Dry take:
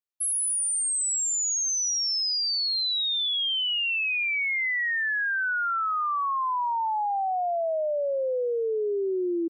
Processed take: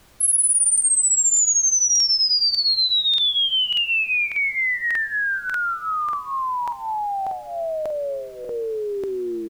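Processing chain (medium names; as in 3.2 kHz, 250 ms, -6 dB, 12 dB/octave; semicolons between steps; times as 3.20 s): AM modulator 120 Hz, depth 20%; comb 4.9 ms, depth 97%; peak limiter -23 dBFS, peak gain reduction 4 dB; treble shelf 2 kHz +10.5 dB; added noise pink -53 dBFS; crackling interface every 0.59 s, samples 2048, repeat, from 0.73 s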